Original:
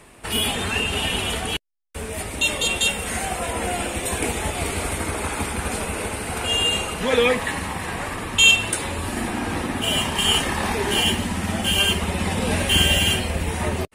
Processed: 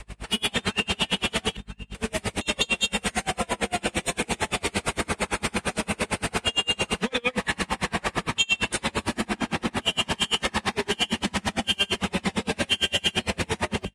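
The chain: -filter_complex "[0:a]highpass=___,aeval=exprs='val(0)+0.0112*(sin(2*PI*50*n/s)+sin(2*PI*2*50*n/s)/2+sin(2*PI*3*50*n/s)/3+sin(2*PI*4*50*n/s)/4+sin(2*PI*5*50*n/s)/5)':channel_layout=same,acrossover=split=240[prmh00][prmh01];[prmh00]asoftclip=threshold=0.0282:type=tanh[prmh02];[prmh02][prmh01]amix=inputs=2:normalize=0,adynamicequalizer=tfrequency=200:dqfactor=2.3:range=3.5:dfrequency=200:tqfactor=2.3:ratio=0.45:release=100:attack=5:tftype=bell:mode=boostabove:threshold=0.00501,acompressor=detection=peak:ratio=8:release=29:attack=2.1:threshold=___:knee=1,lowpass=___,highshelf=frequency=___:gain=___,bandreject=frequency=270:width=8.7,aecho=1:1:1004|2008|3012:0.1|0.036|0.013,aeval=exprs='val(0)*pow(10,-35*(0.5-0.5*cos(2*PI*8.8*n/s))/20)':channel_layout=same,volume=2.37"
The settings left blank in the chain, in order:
92, 0.0501, 5.2k, 4.1k, 10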